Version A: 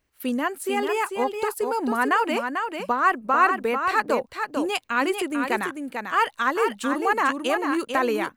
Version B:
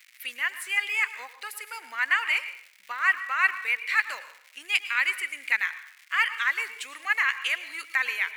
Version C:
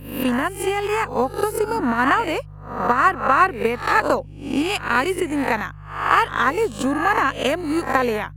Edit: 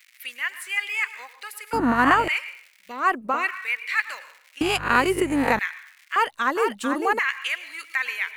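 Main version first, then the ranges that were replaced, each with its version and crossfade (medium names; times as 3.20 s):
B
1.73–2.28 s: from C
2.97–3.40 s: from A, crossfade 0.24 s
4.61–5.59 s: from C
6.16–7.19 s: from A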